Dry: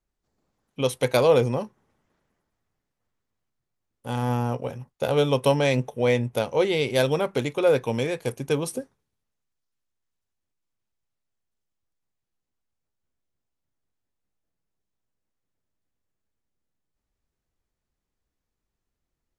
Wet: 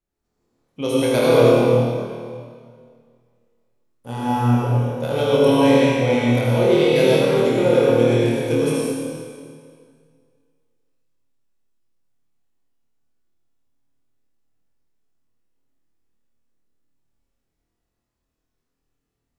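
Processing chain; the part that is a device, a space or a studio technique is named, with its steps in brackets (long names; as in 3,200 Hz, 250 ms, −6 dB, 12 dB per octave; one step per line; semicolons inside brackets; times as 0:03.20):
tunnel (flutter between parallel walls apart 4.4 metres, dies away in 0.48 s; convolution reverb RT60 2.1 s, pre-delay 68 ms, DRR −5 dB)
parametric band 260 Hz +4 dB 1.4 octaves
level −4.5 dB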